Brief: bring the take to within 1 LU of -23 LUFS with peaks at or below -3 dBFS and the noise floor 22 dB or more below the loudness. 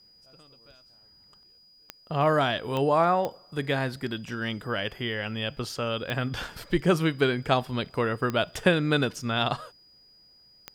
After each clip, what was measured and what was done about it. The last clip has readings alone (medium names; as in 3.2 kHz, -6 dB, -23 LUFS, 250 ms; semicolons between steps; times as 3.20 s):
clicks found 6; steady tone 4.9 kHz; tone level -55 dBFS; loudness -27.0 LUFS; peak level -8.0 dBFS; loudness target -23.0 LUFS
-> de-click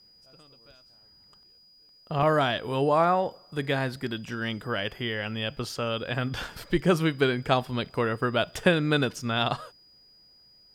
clicks found 0; steady tone 4.9 kHz; tone level -55 dBFS
-> band-stop 4.9 kHz, Q 30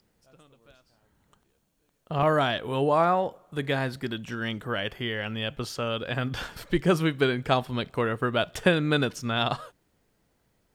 steady tone not found; loudness -27.0 LUFS; peak level -8.0 dBFS; loudness target -23.0 LUFS
-> trim +4 dB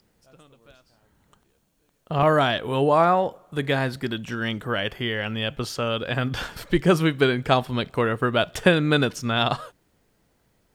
loudness -23.0 LUFS; peak level -4.0 dBFS; noise floor -67 dBFS